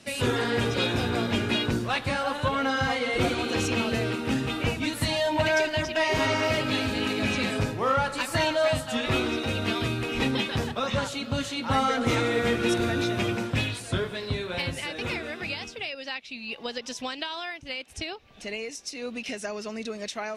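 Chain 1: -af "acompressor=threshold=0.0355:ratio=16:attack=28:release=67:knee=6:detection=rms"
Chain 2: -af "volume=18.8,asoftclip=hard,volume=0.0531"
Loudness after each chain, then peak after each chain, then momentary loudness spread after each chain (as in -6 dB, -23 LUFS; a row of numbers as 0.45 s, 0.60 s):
-32.0 LUFS, -30.0 LUFS; -17.5 dBFS, -25.5 dBFS; 5 LU, 7 LU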